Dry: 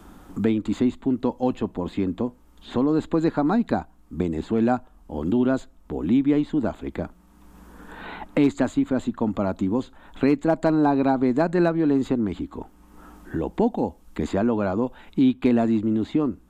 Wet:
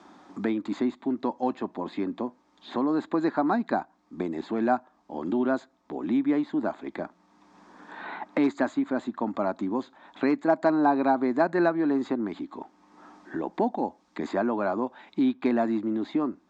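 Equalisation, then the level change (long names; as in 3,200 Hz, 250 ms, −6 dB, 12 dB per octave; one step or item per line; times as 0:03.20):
dynamic equaliser 1,500 Hz, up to +6 dB, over −45 dBFS, Q 1.9
dynamic equaliser 3,300 Hz, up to −5 dB, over −43 dBFS, Q 0.72
loudspeaker in its box 350–5,700 Hz, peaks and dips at 470 Hz −9 dB, 1,400 Hz −6 dB, 2,900 Hz −8 dB
+1.5 dB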